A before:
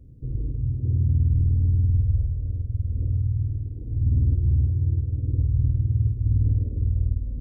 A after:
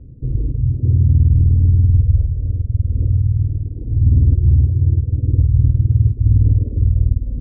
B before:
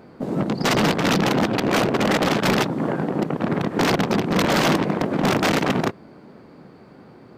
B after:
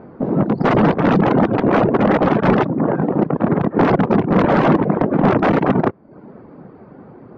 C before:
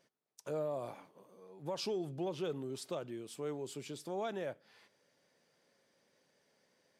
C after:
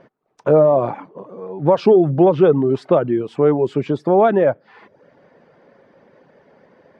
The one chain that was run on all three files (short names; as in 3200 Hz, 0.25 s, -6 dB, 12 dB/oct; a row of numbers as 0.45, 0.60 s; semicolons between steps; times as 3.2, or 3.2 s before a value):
reverb removal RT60 0.5 s; LPF 1300 Hz 12 dB/oct; match loudness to -16 LUFS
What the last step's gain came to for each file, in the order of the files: +9.5, +7.0, +26.0 dB